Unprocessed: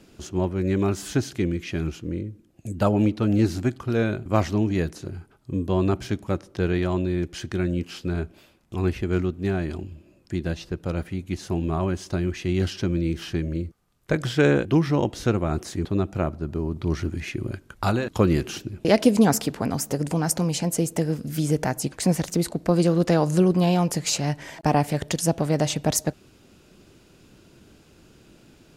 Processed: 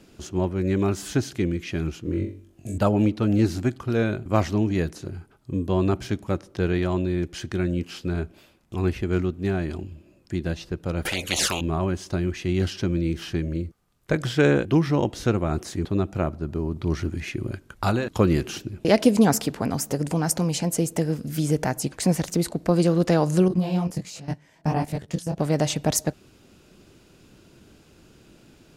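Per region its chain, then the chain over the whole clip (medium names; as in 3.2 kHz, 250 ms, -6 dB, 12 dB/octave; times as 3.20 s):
2.03–2.78 s: doubling 24 ms -6 dB + flutter echo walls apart 3.6 m, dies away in 0.38 s
11.05–11.61 s: touch-sensitive flanger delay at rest 2.6 ms, full sweep at -24.5 dBFS + bass shelf 320 Hz +11.5 dB + spectrum-flattening compressor 10:1
23.48–25.40 s: peaking EQ 170 Hz +6.5 dB 1.1 oct + level held to a coarse grid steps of 18 dB + detune thickener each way 49 cents
whole clip: none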